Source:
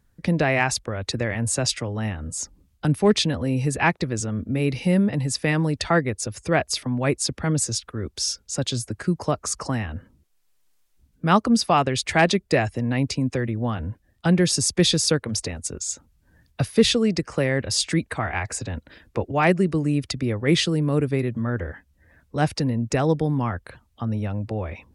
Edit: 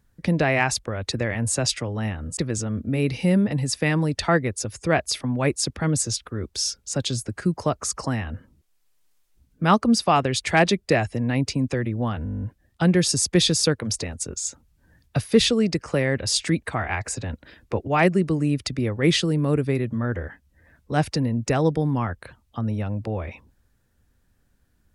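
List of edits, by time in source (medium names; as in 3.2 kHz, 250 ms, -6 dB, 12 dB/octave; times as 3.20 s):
2.37–3.99 s: delete
13.86 s: stutter 0.02 s, 10 plays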